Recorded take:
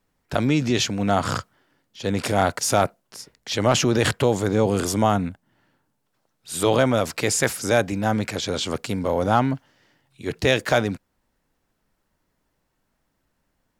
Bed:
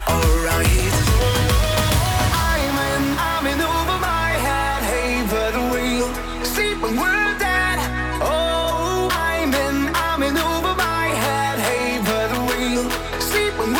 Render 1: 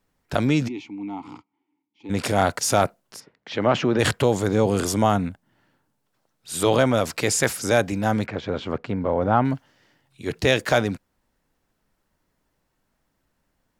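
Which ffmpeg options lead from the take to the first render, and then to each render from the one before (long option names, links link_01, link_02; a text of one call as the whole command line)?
ffmpeg -i in.wav -filter_complex "[0:a]asplit=3[link_01][link_02][link_03];[link_01]afade=type=out:start_time=0.67:duration=0.02[link_04];[link_02]asplit=3[link_05][link_06][link_07];[link_05]bandpass=frequency=300:width_type=q:width=8,volume=0dB[link_08];[link_06]bandpass=frequency=870:width_type=q:width=8,volume=-6dB[link_09];[link_07]bandpass=frequency=2240:width_type=q:width=8,volume=-9dB[link_10];[link_08][link_09][link_10]amix=inputs=3:normalize=0,afade=type=in:start_time=0.67:duration=0.02,afade=type=out:start_time=2.09:duration=0.02[link_11];[link_03]afade=type=in:start_time=2.09:duration=0.02[link_12];[link_04][link_11][link_12]amix=inputs=3:normalize=0,asplit=3[link_13][link_14][link_15];[link_13]afade=type=out:start_time=3.19:duration=0.02[link_16];[link_14]highpass=140,lowpass=2500,afade=type=in:start_time=3.19:duration=0.02,afade=type=out:start_time=3.98:duration=0.02[link_17];[link_15]afade=type=in:start_time=3.98:duration=0.02[link_18];[link_16][link_17][link_18]amix=inputs=3:normalize=0,asplit=3[link_19][link_20][link_21];[link_19]afade=type=out:start_time=8.25:duration=0.02[link_22];[link_20]lowpass=1900,afade=type=in:start_time=8.25:duration=0.02,afade=type=out:start_time=9.44:duration=0.02[link_23];[link_21]afade=type=in:start_time=9.44:duration=0.02[link_24];[link_22][link_23][link_24]amix=inputs=3:normalize=0" out.wav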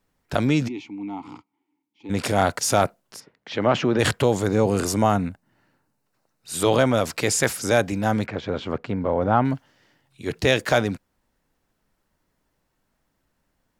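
ffmpeg -i in.wav -filter_complex "[0:a]asettb=1/sr,asplit=3[link_01][link_02][link_03];[link_01]atrim=end=4.474[link_04];[link_02]atrim=start=4.47:end=6.53,asetpts=PTS-STARTPTS,afade=type=in:duration=0.004:curve=qsin,afade=type=out:start_time=2.056:duration=0.004:curve=qsin,bandreject=frequency=3300:width=6.7[link_05];[link_03]atrim=start=6.526[link_06];[link_04][link_05]acrossfade=duration=0.004:curve1=hsin:curve2=qsin[link_07];[link_07][link_06]acrossfade=duration=0.004:curve1=qsin:curve2=hsin" out.wav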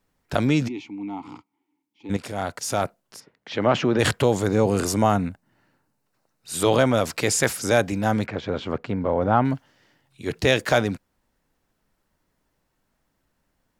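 ffmpeg -i in.wav -filter_complex "[0:a]asplit=2[link_01][link_02];[link_01]atrim=end=2.17,asetpts=PTS-STARTPTS,afade=type=out:start_time=2.166:duration=0.004:curve=hsin:silence=0.251189[link_03];[link_02]atrim=start=2.17,asetpts=PTS-STARTPTS,afade=type=in:duration=1.44:silence=0.251189[link_04];[link_03][link_04]concat=n=2:v=0:a=1" out.wav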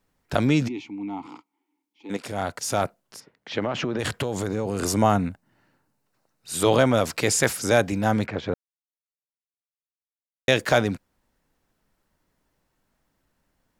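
ffmpeg -i in.wav -filter_complex "[0:a]asettb=1/sr,asplit=3[link_01][link_02][link_03];[link_01]atrim=end=1.264[link_04];[link_02]atrim=start=1.26:end=2.25,asetpts=PTS-STARTPTS,afade=type=in:duration=0.004:curve=qsin,afade=type=out:start_time=0.986:duration=0.004:curve=qsin,highpass=270[link_05];[link_03]atrim=start=2.246[link_06];[link_04][link_05]acrossfade=duration=0.004:curve1=hsin:curve2=qsin[link_07];[link_07][link_06]acrossfade=duration=0.004:curve1=qsin:curve2=hsin,asettb=1/sr,asplit=3[link_08][link_09][link_10];[link_08]atrim=end=3.594[link_11];[link_09]atrim=start=3.59:end=4.83,asetpts=PTS-STARTPTS,afade=type=in:duration=0.004:curve=qsin,afade=type=out:start_time=1.236:duration=0.004:curve=qsin,acompressor=threshold=-22dB:ratio=6:attack=3.2:release=140:knee=1:detection=peak[link_12];[link_10]atrim=start=4.826[link_13];[link_11][link_12]acrossfade=duration=0.004:curve1=hsin:curve2=qsin[link_14];[link_14][link_13]acrossfade=duration=0.004:curve1=qsin:curve2=hsin,asplit=3[link_15][link_16][link_17];[link_15]atrim=end=8.54,asetpts=PTS-STARTPTS,afade=type=out:start_time=8.536:duration=0.004:curve=hsin[link_18];[link_16]atrim=start=8.54:end=10.48,asetpts=PTS-STARTPTS,volume=0[link_19];[link_17]atrim=start=10.48,asetpts=PTS-STARTPTS,afade=type=in:duration=0.004:curve=hsin[link_20];[link_18][link_19][link_20]concat=n=3:v=0:a=1" out.wav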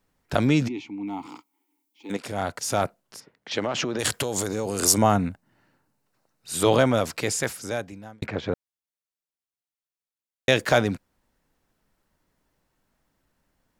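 ffmpeg -i in.wav -filter_complex "[0:a]asettb=1/sr,asplit=3[link_01][link_02][link_03];[link_01]atrim=end=1.074[link_04];[link_02]atrim=start=1.07:end=2.12,asetpts=PTS-STARTPTS,afade=type=in:duration=0.004:curve=qsin,afade=type=out:start_time=1.046:duration=0.004:curve=qsin,aemphasis=mode=production:type=50kf[link_05];[link_03]atrim=start=2.116[link_06];[link_04][link_05]acrossfade=duration=0.004:curve1=hsin:curve2=qsin[link_07];[link_07][link_06]acrossfade=duration=0.004:curve1=qsin:curve2=hsin,asettb=1/sr,asplit=3[link_08][link_09][link_10];[link_08]atrim=end=3.514[link_11];[link_09]atrim=start=3.51:end=4.98,asetpts=PTS-STARTPTS,afade=type=in:duration=0.004:curve=qsin,afade=type=out:start_time=1.466:duration=0.004:curve=qsin,bass=frequency=250:gain=-4,treble=frequency=4000:gain=11[link_12];[link_10]atrim=start=4.976[link_13];[link_11][link_12]acrossfade=duration=0.004:curve1=hsin:curve2=qsin[link_14];[link_14][link_13]acrossfade=duration=0.004:curve1=qsin:curve2=hsin,asplit=2[link_15][link_16];[link_15]atrim=end=8.22,asetpts=PTS-STARTPTS,afade=type=out:start_time=6.71:duration=1.51[link_17];[link_16]atrim=start=8.22,asetpts=PTS-STARTPTS,afade=type=in:duration=0.004:curve=hsin[link_18];[link_17][link_18]concat=n=2:v=0:a=1" out.wav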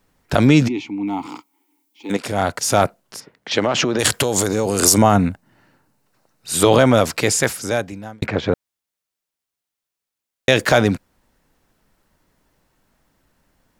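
ffmpeg -i in.wav -af "alimiter=level_in=8.5dB:limit=-1dB:release=50:level=0:latency=1" out.wav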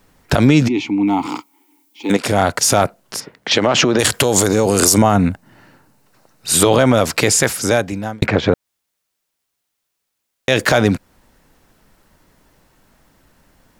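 ffmpeg -i in.wav -af "acompressor=threshold=-22dB:ratio=2,alimiter=level_in=9dB:limit=-1dB:release=50:level=0:latency=1" out.wav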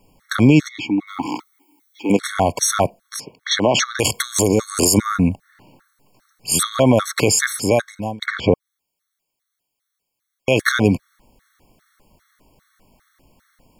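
ffmpeg -i in.wav -af "afftfilt=real='re*gt(sin(2*PI*2.5*pts/sr)*(1-2*mod(floor(b*sr/1024/1100),2)),0)':imag='im*gt(sin(2*PI*2.5*pts/sr)*(1-2*mod(floor(b*sr/1024/1100),2)),0)':win_size=1024:overlap=0.75" out.wav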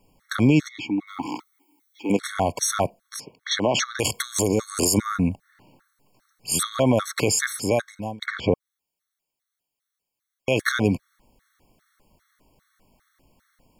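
ffmpeg -i in.wav -af "volume=-5.5dB" out.wav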